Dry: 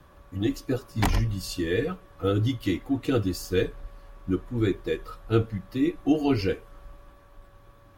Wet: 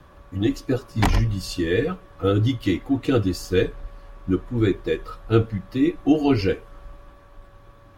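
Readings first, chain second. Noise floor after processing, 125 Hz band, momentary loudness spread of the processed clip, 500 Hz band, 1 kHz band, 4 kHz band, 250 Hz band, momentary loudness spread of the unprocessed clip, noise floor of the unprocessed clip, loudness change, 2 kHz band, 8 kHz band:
-49 dBFS, +4.5 dB, 8 LU, +4.5 dB, +4.5 dB, +3.5 dB, +4.5 dB, 8 LU, -54 dBFS, +4.5 dB, +4.0 dB, +1.5 dB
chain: treble shelf 10 kHz -9.5 dB; trim +4.5 dB

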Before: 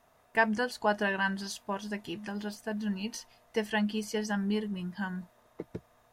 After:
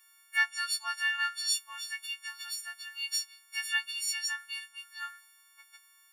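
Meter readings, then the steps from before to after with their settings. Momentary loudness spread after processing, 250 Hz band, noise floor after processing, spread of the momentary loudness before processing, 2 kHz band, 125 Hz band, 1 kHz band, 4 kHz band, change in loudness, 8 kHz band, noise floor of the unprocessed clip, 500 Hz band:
12 LU, under -40 dB, -63 dBFS, 16 LU, +1.5 dB, under -40 dB, -7.0 dB, +8.0 dB, 0.0 dB, +9.5 dB, -65 dBFS, under -30 dB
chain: partials quantised in pitch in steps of 4 st; inverse Chebyshev high-pass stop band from 420 Hz, stop band 60 dB

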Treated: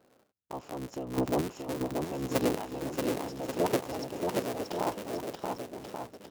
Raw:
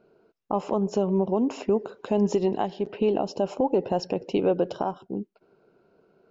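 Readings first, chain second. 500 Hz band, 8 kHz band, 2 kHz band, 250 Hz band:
-8.0 dB, no reading, +2.5 dB, -7.0 dB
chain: cycle switcher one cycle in 3, inverted; high-pass 58 Hz; square tremolo 0.85 Hz, depth 65%, duty 20%; treble shelf 4.8 kHz +7 dB; bouncing-ball echo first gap 630 ms, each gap 0.8×, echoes 5; trim -4.5 dB

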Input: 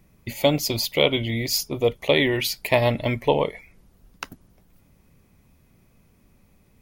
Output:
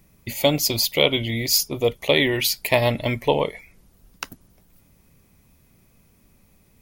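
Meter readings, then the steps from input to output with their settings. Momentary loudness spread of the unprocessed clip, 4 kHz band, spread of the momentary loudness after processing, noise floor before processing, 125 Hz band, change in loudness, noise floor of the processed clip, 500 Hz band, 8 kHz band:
17 LU, +3.5 dB, 15 LU, -60 dBFS, 0.0 dB, +1.5 dB, -59 dBFS, 0.0 dB, +5.5 dB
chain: treble shelf 4 kHz +7 dB

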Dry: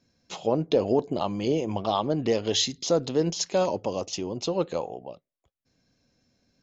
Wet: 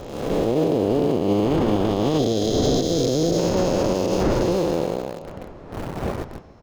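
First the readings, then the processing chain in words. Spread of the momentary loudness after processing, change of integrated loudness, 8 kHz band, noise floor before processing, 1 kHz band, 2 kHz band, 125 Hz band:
13 LU, +5.5 dB, no reading, under -85 dBFS, +3.5 dB, +5.5 dB, +9.0 dB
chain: spectral blur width 744 ms; wind noise 560 Hz -39 dBFS; bass shelf 120 Hz +4.5 dB; on a send: delay 421 ms -20 dB; on the sum: dynamic bell 340 Hz, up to +4 dB, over -39 dBFS, Q 1.4; time-frequency box 2.19–3.38 s, 790–3100 Hz -9 dB; in parallel at -4 dB: small samples zeroed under -36 dBFS; on the sum: peak limiter -18.5 dBFS, peak gain reduction 10.5 dB; trim +7.5 dB

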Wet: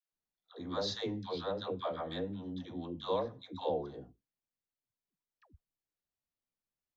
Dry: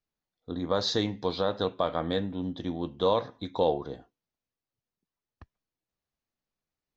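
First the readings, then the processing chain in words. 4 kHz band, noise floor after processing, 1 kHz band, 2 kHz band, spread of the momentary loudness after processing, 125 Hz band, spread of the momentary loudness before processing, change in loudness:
-8.5 dB, under -85 dBFS, -8.5 dB, -8.5 dB, 8 LU, -8.5 dB, 10 LU, -8.5 dB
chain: phase dispersion lows, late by 125 ms, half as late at 500 Hz; trim -8.5 dB

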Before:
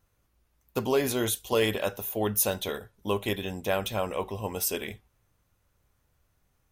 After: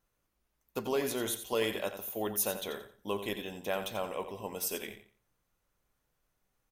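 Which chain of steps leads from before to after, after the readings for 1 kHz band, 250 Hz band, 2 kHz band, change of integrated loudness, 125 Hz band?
-5.5 dB, -6.5 dB, -5.5 dB, -6.0 dB, -12.0 dB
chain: peaking EQ 79 Hz -14.5 dB 0.98 oct; on a send: feedback delay 88 ms, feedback 26%, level -10 dB; on the sum: trim -6 dB

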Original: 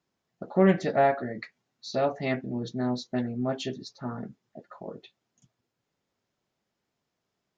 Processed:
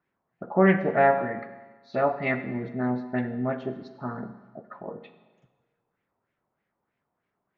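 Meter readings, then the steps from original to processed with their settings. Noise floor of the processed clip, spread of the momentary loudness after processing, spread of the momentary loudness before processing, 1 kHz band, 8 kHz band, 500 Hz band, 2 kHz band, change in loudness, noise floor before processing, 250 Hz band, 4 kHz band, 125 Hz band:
-81 dBFS, 20 LU, 21 LU, +3.5 dB, no reading, +2.0 dB, +6.5 dB, +2.0 dB, -83 dBFS, +1.0 dB, -10.5 dB, +1.0 dB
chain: LFO low-pass sine 3.2 Hz 910–2200 Hz; Schroeder reverb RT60 1.3 s, combs from 32 ms, DRR 10.5 dB

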